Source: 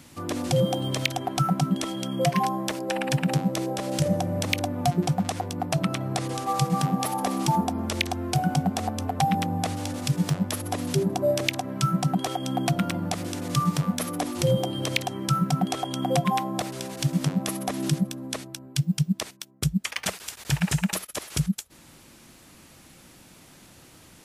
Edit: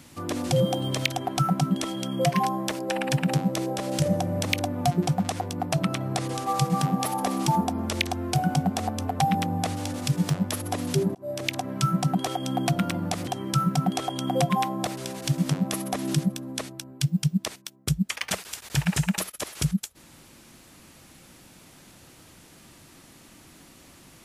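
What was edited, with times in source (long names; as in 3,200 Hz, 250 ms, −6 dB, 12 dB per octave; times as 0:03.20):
0:11.15–0:11.61: fade in
0:13.27–0:15.02: remove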